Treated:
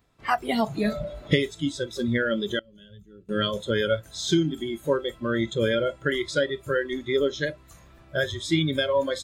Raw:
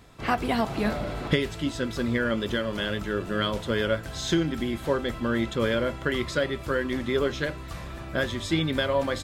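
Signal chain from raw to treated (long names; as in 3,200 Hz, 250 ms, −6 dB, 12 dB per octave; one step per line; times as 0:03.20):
noise reduction from a noise print of the clip's start 17 dB
0:02.59–0:03.29: guitar amp tone stack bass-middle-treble 10-0-1
level +2.5 dB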